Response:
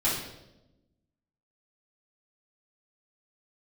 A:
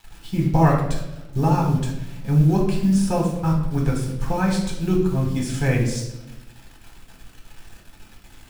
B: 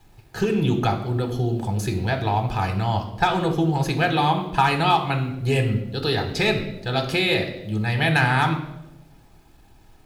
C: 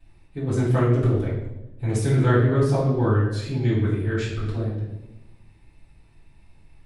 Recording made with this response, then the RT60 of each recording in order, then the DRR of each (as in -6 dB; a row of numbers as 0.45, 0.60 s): C; 0.95, 0.95, 0.95 s; -1.5, 4.5, -9.0 dB